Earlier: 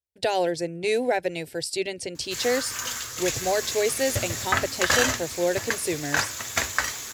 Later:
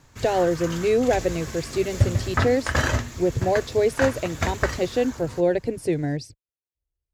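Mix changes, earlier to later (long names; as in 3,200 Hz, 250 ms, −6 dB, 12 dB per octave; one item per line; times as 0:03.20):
background: entry −2.15 s
master: add spectral tilt −3.5 dB per octave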